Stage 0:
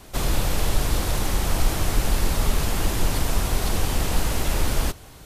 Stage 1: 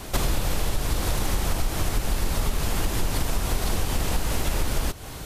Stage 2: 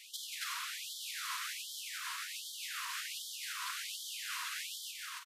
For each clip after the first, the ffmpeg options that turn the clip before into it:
ffmpeg -i in.wav -af "acompressor=threshold=-29dB:ratio=6,volume=8.5dB" out.wav
ffmpeg -i in.wav -filter_complex "[0:a]lowpass=frequency=4000:poles=1,asplit=2[link_01][link_02];[link_02]aecho=0:1:180.8|274.1:0.562|0.794[link_03];[link_01][link_03]amix=inputs=2:normalize=0,afftfilt=real='re*gte(b*sr/1024,920*pow(3100/920,0.5+0.5*sin(2*PI*1.3*pts/sr)))':imag='im*gte(b*sr/1024,920*pow(3100/920,0.5+0.5*sin(2*PI*1.3*pts/sr)))':win_size=1024:overlap=0.75,volume=-6dB" out.wav

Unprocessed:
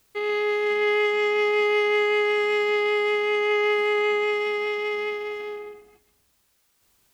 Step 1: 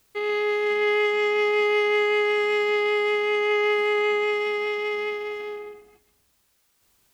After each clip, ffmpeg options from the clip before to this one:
ffmpeg -i in.wav -af anull out.wav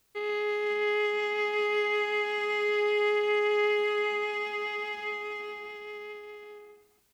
ffmpeg -i in.wav -af "aecho=1:1:1026:0.422,volume=-6dB" out.wav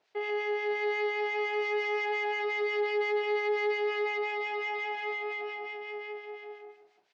ffmpeg -i in.wav -filter_complex "[0:a]acrossover=split=1300[link_01][link_02];[link_01]aeval=exprs='val(0)*(1-0.7/2+0.7/2*cos(2*PI*5.7*n/s))':channel_layout=same[link_03];[link_02]aeval=exprs='val(0)*(1-0.7/2-0.7/2*cos(2*PI*5.7*n/s))':channel_layout=same[link_04];[link_03][link_04]amix=inputs=2:normalize=0,asplit=2[link_05][link_06];[link_06]highpass=frequency=720:poles=1,volume=16dB,asoftclip=type=tanh:threshold=-21.5dB[link_07];[link_05][link_07]amix=inputs=2:normalize=0,lowpass=frequency=1500:poles=1,volume=-6dB,highpass=210,equalizer=frequency=240:width_type=q:width=4:gain=-8,equalizer=frequency=710:width_type=q:width=4:gain=7,equalizer=frequency=1200:width_type=q:width=4:gain=-7,lowpass=frequency=5700:width=0.5412,lowpass=frequency=5700:width=1.3066" out.wav

